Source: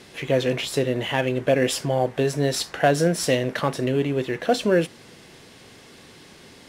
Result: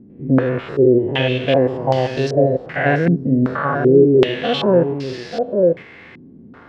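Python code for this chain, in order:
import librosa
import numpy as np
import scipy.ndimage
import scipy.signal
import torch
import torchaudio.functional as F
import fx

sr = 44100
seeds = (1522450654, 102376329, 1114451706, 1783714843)

p1 = fx.spec_steps(x, sr, hold_ms=100)
p2 = p1 + fx.echo_single(p1, sr, ms=893, db=-7.5, dry=0)
p3 = fx.rider(p2, sr, range_db=3, speed_s=2.0)
p4 = fx.quant_dither(p3, sr, seeds[0], bits=6, dither='none')
p5 = p3 + (p4 * librosa.db_to_amplitude(-9.0))
p6 = fx.hpss(p5, sr, part='harmonic', gain_db=7)
p7 = fx.filter_held_lowpass(p6, sr, hz=2.6, low_hz=250.0, high_hz=4900.0)
y = p7 * librosa.db_to_amplitude(-3.5)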